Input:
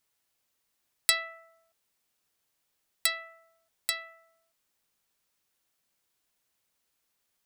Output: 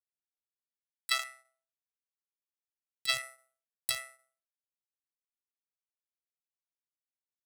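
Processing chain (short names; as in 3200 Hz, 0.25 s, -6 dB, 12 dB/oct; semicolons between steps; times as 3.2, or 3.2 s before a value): Wiener smoothing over 9 samples; pre-emphasis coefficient 0.9; de-hum 372.2 Hz, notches 35; gate -59 dBFS, range -25 dB; 1.19–3.22 bell 3300 Hz +10 dB 2.3 oct; sample leveller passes 3; negative-ratio compressor -20 dBFS, ratio -0.5; AM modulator 130 Hz, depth 40%; high-pass sweep 2800 Hz -> 81 Hz, 0.28–3.44; sustainer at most 140 dB/s; gain -6 dB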